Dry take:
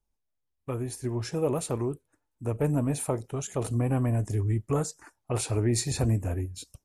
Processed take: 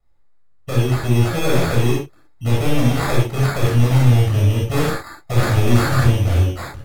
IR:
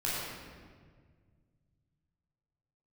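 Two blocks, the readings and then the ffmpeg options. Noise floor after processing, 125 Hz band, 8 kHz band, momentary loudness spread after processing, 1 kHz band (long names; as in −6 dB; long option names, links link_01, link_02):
−49 dBFS, +13.0 dB, +2.5 dB, 8 LU, +13.5 dB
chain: -filter_complex "[0:a]acrusher=samples=15:mix=1:aa=0.000001,volume=28.5dB,asoftclip=hard,volume=-28.5dB[link_01];[1:a]atrim=start_sample=2205,afade=type=out:start_time=0.14:duration=0.01,atrim=end_sample=6615,asetrate=34398,aresample=44100[link_02];[link_01][link_02]afir=irnorm=-1:irlink=0,volume=8dB"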